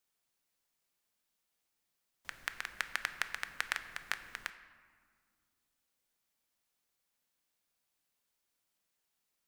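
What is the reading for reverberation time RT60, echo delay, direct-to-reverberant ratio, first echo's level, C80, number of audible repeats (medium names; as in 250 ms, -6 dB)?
1.9 s, no echo, 9.5 dB, no echo, 13.0 dB, no echo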